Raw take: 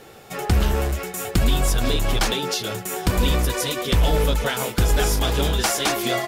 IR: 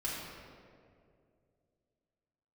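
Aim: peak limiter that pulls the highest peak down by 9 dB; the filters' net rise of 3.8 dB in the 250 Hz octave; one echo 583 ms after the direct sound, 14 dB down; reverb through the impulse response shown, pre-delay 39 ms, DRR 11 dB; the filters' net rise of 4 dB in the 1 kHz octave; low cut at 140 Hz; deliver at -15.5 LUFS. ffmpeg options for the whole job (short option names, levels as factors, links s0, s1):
-filter_complex "[0:a]highpass=140,equalizer=f=250:t=o:g=5.5,equalizer=f=1000:t=o:g=5,alimiter=limit=0.2:level=0:latency=1,aecho=1:1:583:0.2,asplit=2[s0][s1];[1:a]atrim=start_sample=2205,adelay=39[s2];[s1][s2]afir=irnorm=-1:irlink=0,volume=0.178[s3];[s0][s3]amix=inputs=2:normalize=0,volume=2.51"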